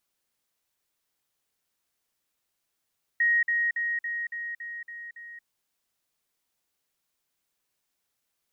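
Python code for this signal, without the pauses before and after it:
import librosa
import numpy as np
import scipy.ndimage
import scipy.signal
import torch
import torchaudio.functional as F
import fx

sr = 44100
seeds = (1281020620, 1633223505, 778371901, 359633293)

y = fx.level_ladder(sr, hz=1880.0, from_db=-19.5, step_db=-3.0, steps=8, dwell_s=0.23, gap_s=0.05)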